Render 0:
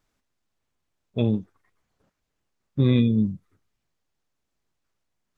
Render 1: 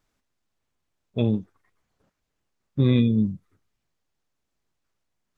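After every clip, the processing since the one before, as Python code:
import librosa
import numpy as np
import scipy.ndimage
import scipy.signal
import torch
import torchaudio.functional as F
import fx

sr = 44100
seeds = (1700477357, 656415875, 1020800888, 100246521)

y = x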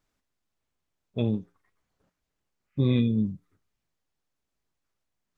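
y = fx.spec_repair(x, sr, seeds[0], start_s=2.65, length_s=0.26, low_hz=1200.0, high_hz=3100.0, source='both')
y = fx.comb_fb(y, sr, f0_hz=58.0, decay_s=0.31, harmonics='odd', damping=0.0, mix_pct=40)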